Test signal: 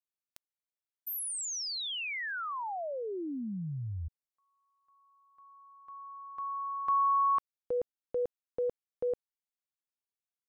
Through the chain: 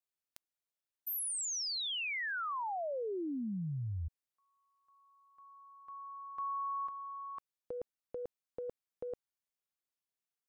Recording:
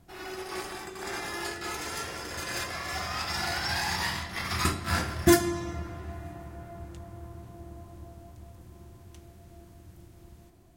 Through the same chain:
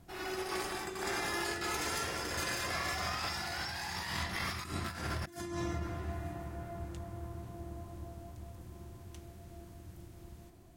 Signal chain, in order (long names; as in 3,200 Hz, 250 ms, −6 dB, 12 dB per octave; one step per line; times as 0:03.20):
compressor whose output falls as the input rises −35 dBFS, ratio −1
level −3 dB